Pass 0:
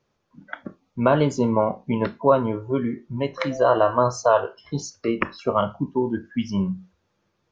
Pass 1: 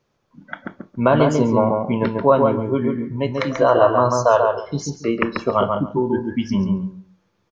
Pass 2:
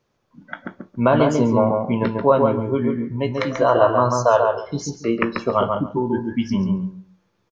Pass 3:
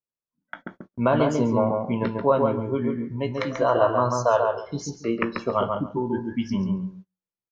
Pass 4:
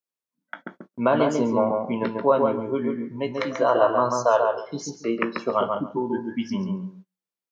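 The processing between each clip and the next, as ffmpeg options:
ffmpeg -i in.wav -filter_complex "[0:a]asplit=2[link_01][link_02];[link_02]adelay=139,lowpass=frequency=1800:poles=1,volume=-3dB,asplit=2[link_03][link_04];[link_04]adelay=139,lowpass=frequency=1800:poles=1,volume=0.21,asplit=2[link_05][link_06];[link_06]adelay=139,lowpass=frequency=1800:poles=1,volume=0.21[link_07];[link_01][link_03][link_05][link_07]amix=inputs=4:normalize=0,volume=2.5dB" out.wav
ffmpeg -i in.wav -filter_complex "[0:a]asplit=2[link_01][link_02];[link_02]adelay=17,volume=-12dB[link_03];[link_01][link_03]amix=inputs=2:normalize=0,volume=-1dB" out.wav
ffmpeg -i in.wav -af "agate=range=-29dB:threshold=-37dB:ratio=16:detection=peak,volume=-4.5dB" out.wav
ffmpeg -i in.wav -af "highpass=200,volume=1dB" out.wav

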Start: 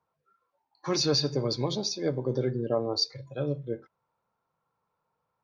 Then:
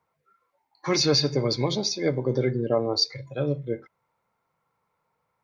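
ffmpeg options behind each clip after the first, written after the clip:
ffmpeg -i in.wav -af "equalizer=frequency=2100:width_type=o:width=0.25:gain=11,volume=4dB" out.wav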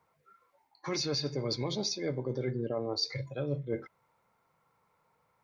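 ffmpeg -i in.wav -af "alimiter=limit=-16.5dB:level=0:latency=1:release=182,areverse,acompressor=threshold=-33dB:ratio=6,areverse,volume=3dB" out.wav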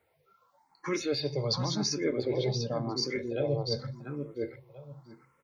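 ffmpeg -i in.wav -filter_complex "[0:a]asplit=2[link_01][link_02];[link_02]adelay=691,lowpass=frequency=3600:poles=1,volume=-4dB,asplit=2[link_03][link_04];[link_04]adelay=691,lowpass=frequency=3600:poles=1,volume=0.23,asplit=2[link_05][link_06];[link_06]adelay=691,lowpass=frequency=3600:poles=1,volume=0.23[link_07];[link_01][link_03][link_05][link_07]amix=inputs=4:normalize=0,asplit=2[link_08][link_09];[link_09]afreqshift=0.9[link_10];[link_08][link_10]amix=inputs=2:normalize=1,volume=5dB" out.wav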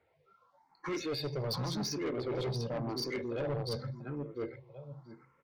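ffmpeg -i in.wav -af "adynamicsmooth=sensitivity=2:basefreq=5000,asoftclip=type=tanh:threshold=-30.5dB" out.wav

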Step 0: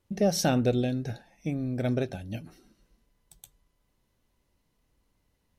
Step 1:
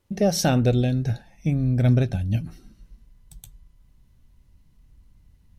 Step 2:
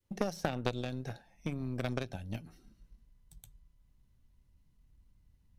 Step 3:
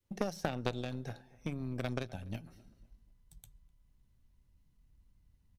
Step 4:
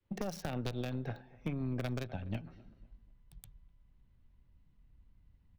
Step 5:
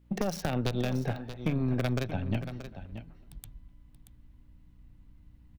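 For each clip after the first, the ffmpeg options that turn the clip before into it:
ffmpeg -i in.wav -af "asubboost=boost=7.5:cutoff=170,volume=4dB" out.wav
ffmpeg -i in.wav -filter_complex "[0:a]adynamicequalizer=threshold=0.02:dfrequency=880:dqfactor=0.86:tfrequency=880:tqfactor=0.86:attack=5:release=100:ratio=0.375:range=2.5:mode=boostabove:tftype=bell,acrossover=split=240|2500[link_01][link_02][link_03];[link_01]acompressor=threshold=-35dB:ratio=4[link_04];[link_02]acompressor=threshold=-31dB:ratio=4[link_05];[link_03]acompressor=threshold=-41dB:ratio=4[link_06];[link_04][link_05][link_06]amix=inputs=3:normalize=0,aeval=exprs='0.168*(cos(1*acos(clip(val(0)/0.168,-1,1)))-cos(1*PI/2))+0.0422*(cos(3*acos(clip(val(0)/0.168,-1,1)))-cos(3*PI/2))+0.0075*(cos(4*acos(clip(val(0)/0.168,-1,1)))-cos(4*PI/2))+0.0119*(cos(6*acos(clip(val(0)/0.168,-1,1)))-cos(6*PI/2))+0.0075*(cos(8*acos(clip(val(0)/0.168,-1,1)))-cos(8*PI/2))':channel_layout=same,volume=1.5dB" out.wav
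ffmpeg -i in.wav -filter_complex "[0:a]asplit=2[link_01][link_02];[link_02]adelay=251,lowpass=frequency=1900:poles=1,volume=-22dB,asplit=2[link_03][link_04];[link_04]adelay=251,lowpass=frequency=1900:poles=1,volume=0.39,asplit=2[link_05][link_06];[link_06]adelay=251,lowpass=frequency=1900:poles=1,volume=0.39[link_07];[link_01][link_03][link_05][link_07]amix=inputs=4:normalize=0,volume=-1.5dB" out.wav
ffmpeg -i in.wav -filter_complex "[0:a]acrossover=split=130|3900[link_01][link_02][link_03];[link_02]alimiter=level_in=6dB:limit=-24dB:level=0:latency=1:release=127,volume=-6dB[link_04];[link_03]aeval=exprs='val(0)*gte(abs(val(0)),0.00398)':channel_layout=same[link_05];[link_01][link_04][link_05]amix=inputs=3:normalize=0,volume=3dB" out.wav
ffmpeg -i in.wav -af "aeval=exprs='val(0)+0.000447*(sin(2*PI*60*n/s)+sin(2*PI*2*60*n/s)/2+sin(2*PI*3*60*n/s)/3+sin(2*PI*4*60*n/s)/4+sin(2*PI*5*60*n/s)/5)':channel_layout=same,aecho=1:1:630:0.266,volume=7.5dB" out.wav

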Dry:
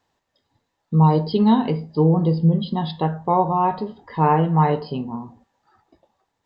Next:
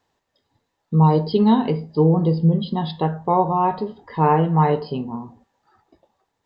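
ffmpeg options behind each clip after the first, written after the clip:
ffmpeg -i in.wav -af "equalizer=frequency=420:width_type=o:width=0.39:gain=3" out.wav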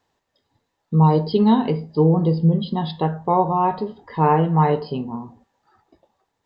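ffmpeg -i in.wav -af anull out.wav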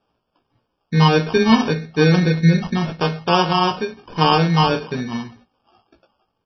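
ffmpeg -i in.wav -filter_complex "[0:a]acrusher=samples=22:mix=1:aa=0.000001,asplit=2[link_01][link_02];[link_02]adelay=17,volume=-5.5dB[link_03];[link_01][link_03]amix=inputs=2:normalize=0,volume=1.5dB" -ar 22050 -c:a libmp3lame -b:a 24k out.mp3

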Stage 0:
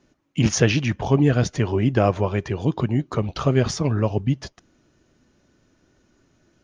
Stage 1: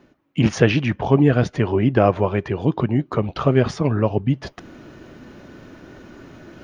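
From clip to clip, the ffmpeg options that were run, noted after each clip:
ffmpeg -i in.wav -af "lowshelf=frequency=100:gain=-8,areverse,acompressor=mode=upward:threshold=-29dB:ratio=2.5,areverse,equalizer=frequency=6600:width=0.92:gain=-14,volume=4dB" out.wav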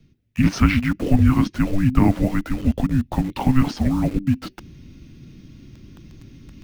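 ffmpeg -i in.wav -filter_complex "[0:a]afreqshift=-390,acrossover=split=450|2100[link_01][link_02][link_03];[link_02]acrusher=bits=6:mix=0:aa=0.000001[link_04];[link_01][link_04][link_03]amix=inputs=3:normalize=0" out.wav

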